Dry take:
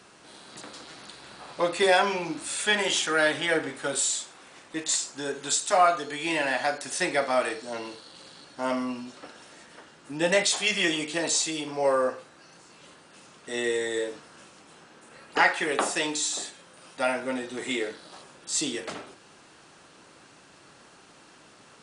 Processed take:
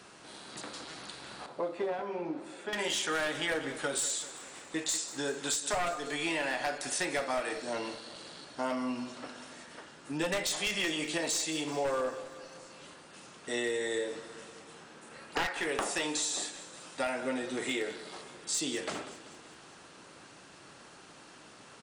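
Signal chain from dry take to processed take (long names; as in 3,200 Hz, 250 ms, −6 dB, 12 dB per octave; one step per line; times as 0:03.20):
wavefolder on the positive side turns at −19 dBFS
downward compressor 4 to 1, threshold −30 dBFS, peak gain reduction 11.5 dB
0:01.46–0:02.73: resonant band-pass 430 Hz, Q 0.8
repeating echo 193 ms, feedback 60%, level −15.5 dB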